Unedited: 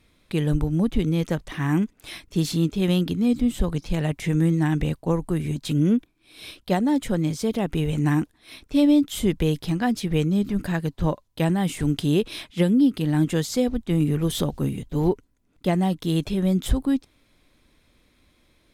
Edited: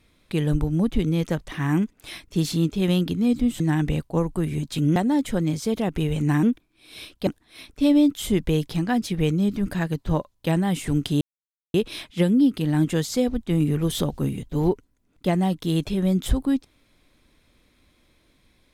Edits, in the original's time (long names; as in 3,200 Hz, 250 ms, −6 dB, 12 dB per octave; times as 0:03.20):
0:03.60–0:04.53: remove
0:05.89–0:06.73: move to 0:08.20
0:12.14: splice in silence 0.53 s